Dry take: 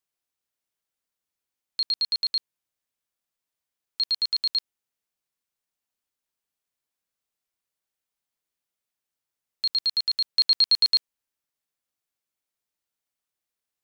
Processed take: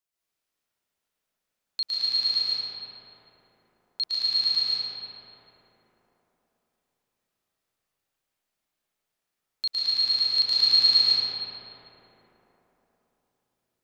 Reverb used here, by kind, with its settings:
comb and all-pass reverb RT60 4.1 s, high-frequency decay 0.4×, pre-delay 95 ms, DRR −9.5 dB
level −3 dB

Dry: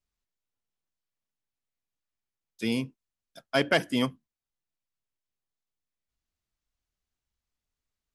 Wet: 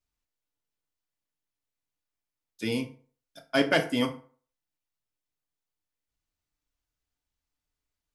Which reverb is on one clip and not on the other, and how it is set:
feedback delay network reverb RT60 0.44 s, low-frequency decay 0.85×, high-frequency decay 0.65×, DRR 4 dB
level −1 dB

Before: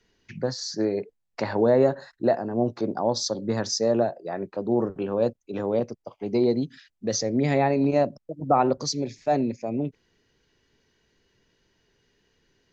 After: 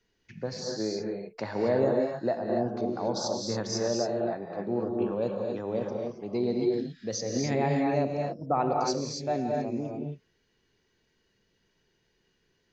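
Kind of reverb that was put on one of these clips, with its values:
reverb whose tail is shaped and stops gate 300 ms rising, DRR 0 dB
level −7 dB

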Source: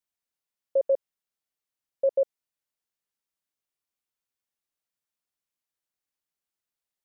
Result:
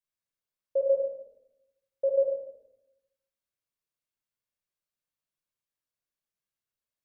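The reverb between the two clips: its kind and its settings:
rectangular room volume 2,400 cubic metres, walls furnished, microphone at 5.4 metres
level −8.5 dB

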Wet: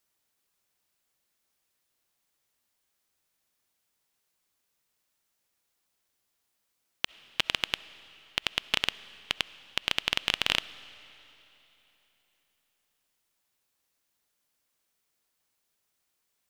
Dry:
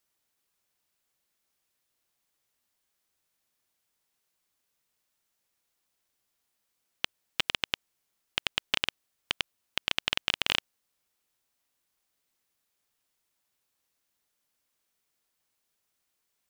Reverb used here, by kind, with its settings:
comb and all-pass reverb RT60 3.4 s, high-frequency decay 0.95×, pre-delay 25 ms, DRR 17.5 dB
level +1 dB

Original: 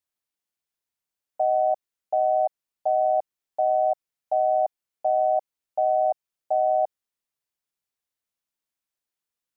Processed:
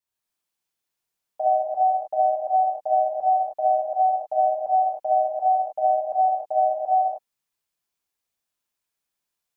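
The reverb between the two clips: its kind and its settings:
reverb whose tail is shaped and stops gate 340 ms flat, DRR −7.5 dB
level −3.5 dB

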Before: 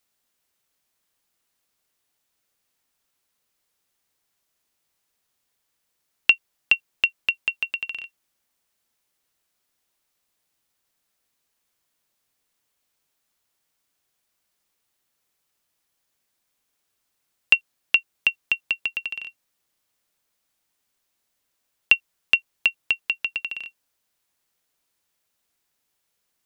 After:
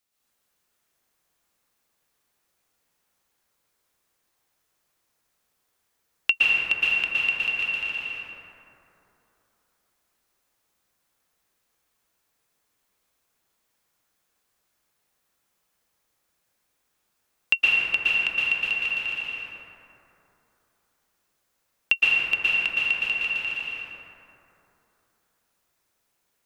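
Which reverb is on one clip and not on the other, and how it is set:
dense smooth reverb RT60 3.2 s, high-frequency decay 0.35×, pre-delay 105 ms, DRR −9 dB
level −5.5 dB

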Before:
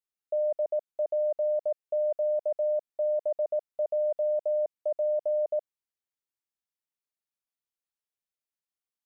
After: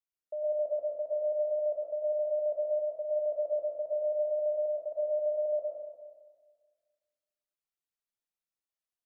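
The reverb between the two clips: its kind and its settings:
comb and all-pass reverb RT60 1.6 s, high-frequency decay 0.85×, pre-delay 70 ms, DRR −4 dB
level −8.5 dB

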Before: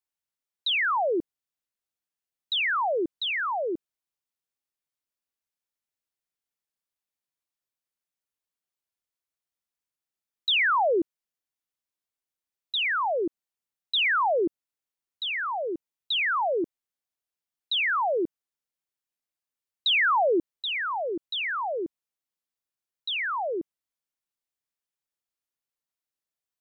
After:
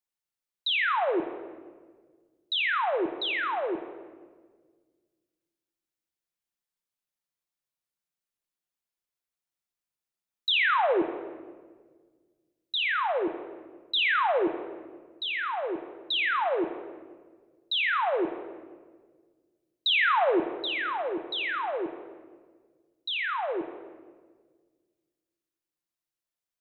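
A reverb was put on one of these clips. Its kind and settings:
rectangular room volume 1,600 cubic metres, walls mixed, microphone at 0.89 metres
level −2 dB

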